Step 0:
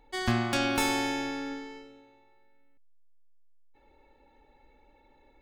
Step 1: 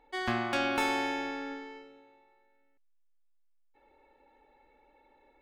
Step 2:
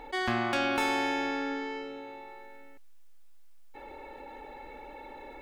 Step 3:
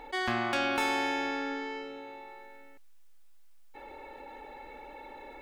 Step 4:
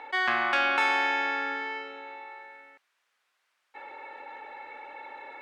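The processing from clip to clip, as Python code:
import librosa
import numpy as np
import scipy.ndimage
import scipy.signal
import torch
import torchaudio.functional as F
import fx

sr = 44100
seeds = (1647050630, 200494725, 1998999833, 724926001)

y1 = fx.bass_treble(x, sr, bass_db=-11, treble_db=-11)
y2 = fx.env_flatten(y1, sr, amount_pct=50)
y3 = fx.low_shelf(y2, sr, hz=420.0, db=-3.5)
y4 = fx.bandpass_q(y3, sr, hz=1600.0, q=0.95)
y4 = F.gain(torch.from_numpy(y4), 8.0).numpy()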